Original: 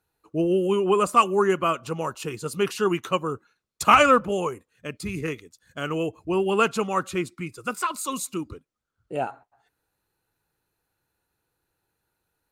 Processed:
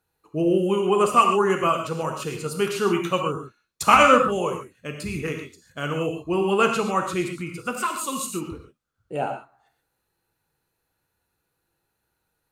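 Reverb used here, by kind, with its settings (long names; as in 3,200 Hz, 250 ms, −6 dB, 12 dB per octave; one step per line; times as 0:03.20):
reverb whose tail is shaped and stops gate 160 ms flat, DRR 3 dB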